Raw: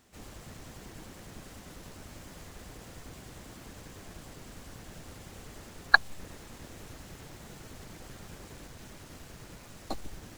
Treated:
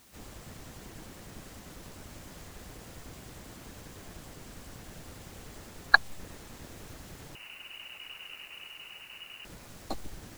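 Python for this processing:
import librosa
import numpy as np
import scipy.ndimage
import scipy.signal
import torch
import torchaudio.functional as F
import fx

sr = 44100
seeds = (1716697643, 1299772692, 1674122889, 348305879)

y = fx.freq_invert(x, sr, carrier_hz=2900, at=(7.35, 9.45))
y = fx.quant_dither(y, sr, seeds[0], bits=10, dither='triangular')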